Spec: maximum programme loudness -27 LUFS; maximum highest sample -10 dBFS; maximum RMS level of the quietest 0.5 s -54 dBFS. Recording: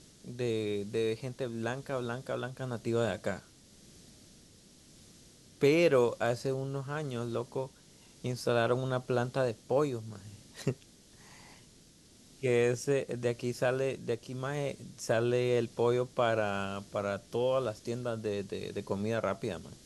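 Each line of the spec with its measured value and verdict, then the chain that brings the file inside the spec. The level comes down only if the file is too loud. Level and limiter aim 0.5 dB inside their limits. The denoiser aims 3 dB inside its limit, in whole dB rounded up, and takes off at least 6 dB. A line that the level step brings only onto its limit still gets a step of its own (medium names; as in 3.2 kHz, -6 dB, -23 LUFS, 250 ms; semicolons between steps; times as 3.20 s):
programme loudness -32.5 LUFS: pass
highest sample -15.0 dBFS: pass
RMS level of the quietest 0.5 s -59 dBFS: pass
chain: none needed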